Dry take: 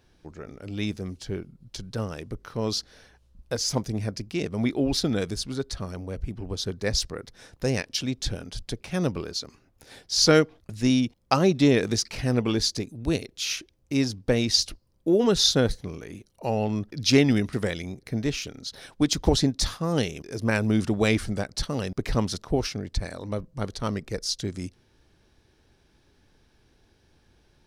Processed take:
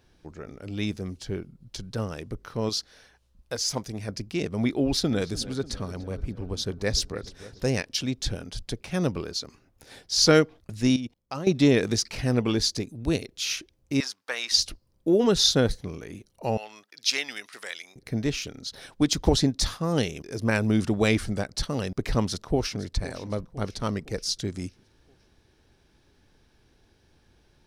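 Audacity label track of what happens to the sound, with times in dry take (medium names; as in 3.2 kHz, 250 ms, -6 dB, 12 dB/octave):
2.690000	4.090000	bass shelf 500 Hz -7 dB
4.820000	7.670000	filtered feedback delay 294 ms, feedback 61%, low-pass 2.9 kHz, level -16 dB
10.960000	11.470000	level held to a coarse grid steps of 16 dB
14.000000	14.520000	resonant high-pass 1.2 kHz, resonance Q 1.6
16.570000	17.960000	Bessel high-pass 1.5 kHz
22.220000	22.790000	echo throw 510 ms, feedback 50%, level -15.5 dB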